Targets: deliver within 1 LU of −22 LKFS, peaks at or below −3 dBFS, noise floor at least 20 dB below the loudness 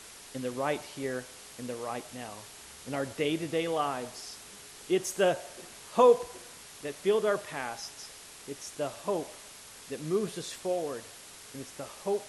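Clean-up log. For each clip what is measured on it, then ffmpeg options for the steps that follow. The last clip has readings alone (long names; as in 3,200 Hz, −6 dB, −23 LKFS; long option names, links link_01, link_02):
background noise floor −49 dBFS; target noise floor −52 dBFS; integrated loudness −32.0 LKFS; sample peak −11.0 dBFS; target loudness −22.0 LKFS
→ -af "afftdn=noise_reduction=6:noise_floor=-49"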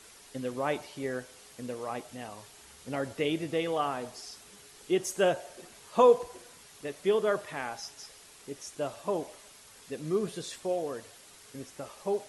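background noise floor −54 dBFS; integrated loudness −31.5 LKFS; sample peak −11.5 dBFS; target loudness −22.0 LKFS
→ -af "volume=9.5dB,alimiter=limit=-3dB:level=0:latency=1"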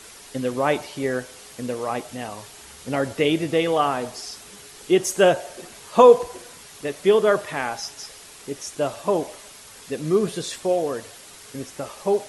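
integrated loudness −22.5 LKFS; sample peak −3.0 dBFS; background noise floor −45 dBFS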